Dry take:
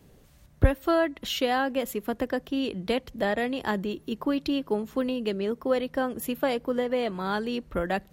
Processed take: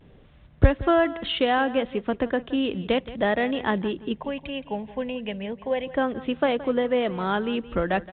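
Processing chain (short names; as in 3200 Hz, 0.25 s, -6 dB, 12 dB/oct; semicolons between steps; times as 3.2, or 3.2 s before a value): 4.18–5.87 fixed phaser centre 1300 Hz, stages 6; vibrato 0.37 Hz 28 cents; on a send: feedback echo 0.171 s, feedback 17%, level -16.5 dB; on the sum: gain +3.5 dB; µ-law 64 kbps 8000 Hz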